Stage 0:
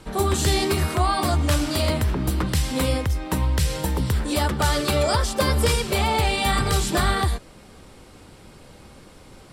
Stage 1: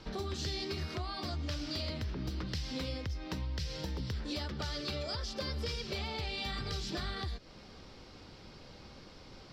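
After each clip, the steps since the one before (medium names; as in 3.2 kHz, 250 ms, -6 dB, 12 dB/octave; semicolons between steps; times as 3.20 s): resonant high shelf 6.9 kHz -11.5 dB, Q 3; compression 4:1, threshold -29 dBFS, peak gain reduction 12 dB; dynamic bell 930 Hz, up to -6 dB, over -47 dBFS, Q 1.4; trim -6.5 dB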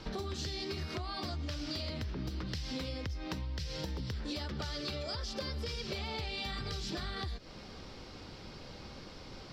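compression, threshold -39 dBFS, peak gain reduction 6.5 dB; trim +4 dB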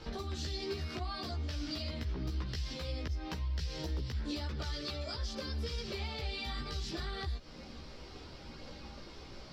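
chorus voices 6, 0.24 Hz, delay 15 ms, depth 2.6 ms; trim +1.5 dB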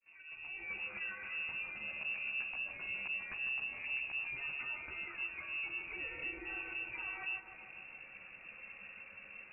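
fade-in on the opening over 0.74 s; thinning echo 151 ms, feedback 76%, high-pass 780 Hz, level -5.5 dB; frequency inversion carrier 2.7 kHz; trim -5 dB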